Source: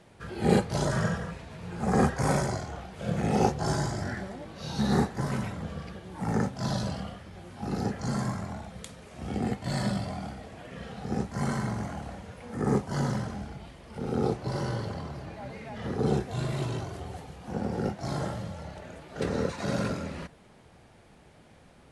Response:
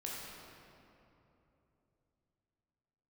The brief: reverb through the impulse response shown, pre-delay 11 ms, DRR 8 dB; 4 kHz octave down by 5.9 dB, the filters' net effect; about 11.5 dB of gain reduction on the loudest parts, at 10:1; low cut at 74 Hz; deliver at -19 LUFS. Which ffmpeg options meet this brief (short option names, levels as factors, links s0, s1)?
-filter_complex "[0:a]highpass=74,equalizer=f=4000:t=o:g=-7.5,acompressor=threshold=0.0316:ratio=10,asplit=2[s0][s1];[1:a]atrim=start_sample=2205,adelay=11[s2];[s1][s2]afir=irnorm=-1:irlink=0,volume=0.376[s3];[s0][s3]amix=inputs=2:normalize=0,volume=7.5"